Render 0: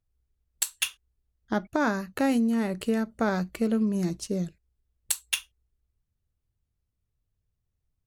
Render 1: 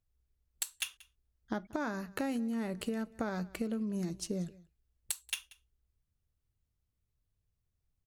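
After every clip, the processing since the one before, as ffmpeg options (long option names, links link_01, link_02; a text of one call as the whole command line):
ffmpeg -i in.wav -af "acompressor=threshold=-30dB:ratio=6,aecho=1:1:184:0.0794,volume=-2.5dB" out.wav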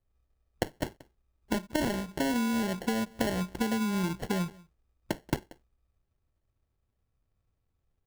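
ffmpeg -i in.wav -filter_complex "[0:a]asplit=2[link_01][link_02];[link_02]aeval=exprs='sgn(val(0))*max(abs(val(0))-0.00224,0)':channel_layout=same,volume=-11.5dB[link_03];[link_01][link_03]amix=inputs=2:normalize=0,acrusher=samples=36:mix=1:aa=0.000001,volume=4dB" out.wav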